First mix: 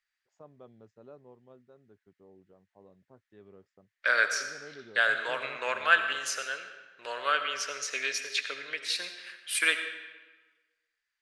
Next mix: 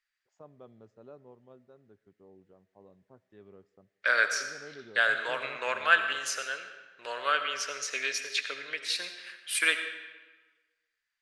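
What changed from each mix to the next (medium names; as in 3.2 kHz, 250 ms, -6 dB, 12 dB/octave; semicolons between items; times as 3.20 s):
first voice: send on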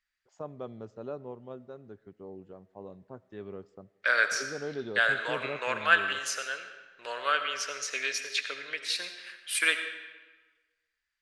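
first voice +11.5 dB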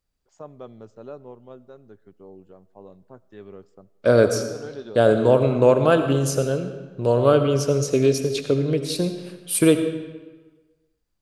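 second voice: remove resonant high-pass 1.8 kHz, resonance Q 4.2; master: remove distance through air 64 m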